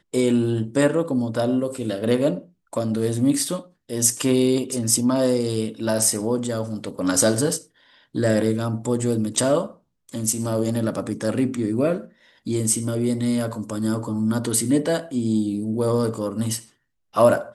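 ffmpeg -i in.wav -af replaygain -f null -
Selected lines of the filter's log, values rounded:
track_gain = +3.3 dB
track_peak = 0.496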